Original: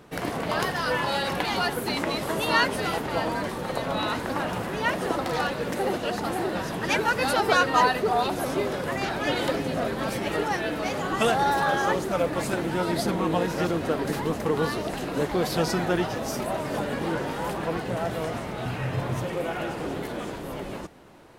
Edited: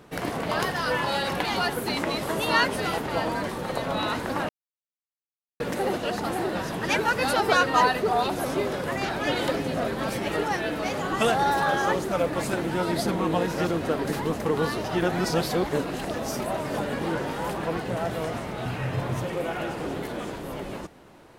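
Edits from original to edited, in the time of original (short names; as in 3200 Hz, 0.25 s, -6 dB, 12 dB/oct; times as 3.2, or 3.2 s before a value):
4.49–5.6 mute
14.84–16.14 reverse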